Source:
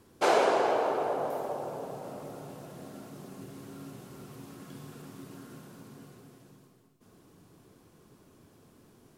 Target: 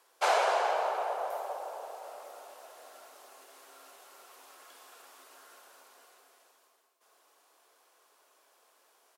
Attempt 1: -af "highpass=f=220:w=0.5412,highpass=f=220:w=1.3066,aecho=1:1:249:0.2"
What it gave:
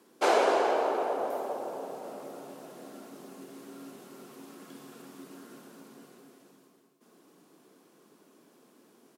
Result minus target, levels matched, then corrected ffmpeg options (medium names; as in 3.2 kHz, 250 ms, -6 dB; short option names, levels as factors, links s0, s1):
250 Hz band +18.0 dB
-af "highpass=f=610:w=0.5412,highpass=f=610:w=1.3066,aecho=1:1:249:0.2"